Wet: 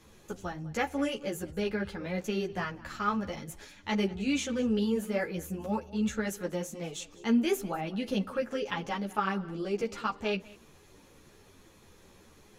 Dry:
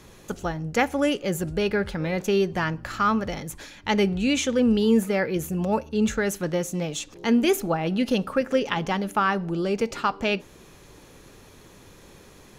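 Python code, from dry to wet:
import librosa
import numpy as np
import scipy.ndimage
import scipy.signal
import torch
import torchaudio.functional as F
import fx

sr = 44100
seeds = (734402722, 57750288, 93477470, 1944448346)

p1 = x + fx.echo_single(x, sr, ms=197, db=-20.5, dry=0)
p2 = fx.ensemble(p1, sr)
y = p2 * 10.0 ** (-5.0 / 20.0)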